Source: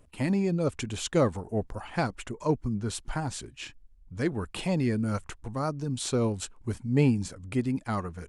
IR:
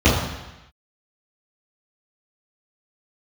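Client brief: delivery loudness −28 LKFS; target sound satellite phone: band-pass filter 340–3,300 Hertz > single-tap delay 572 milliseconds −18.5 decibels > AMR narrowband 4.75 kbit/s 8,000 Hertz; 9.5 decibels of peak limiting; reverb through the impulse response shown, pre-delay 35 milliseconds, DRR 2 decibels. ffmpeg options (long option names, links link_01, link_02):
-filter_complex "[0:a]alimiter=limit=-20.5dB:level=0:latency=1,asplit=2[link_01][link_02];[1:a]atrim=start_sample=2205,adelay=35[link_03];[link_02][link_03]afir=irnorm=-1:irlink=0,volume=-25dB[link_04];[link_01][link_04]amix=inputs=2:normalize=0,highpass=340,lowpass=3300,aecho=1:1:572:0.119,volume=5.5dB" -ar 8000 -c:a libopencore_amrnb -b:a 4750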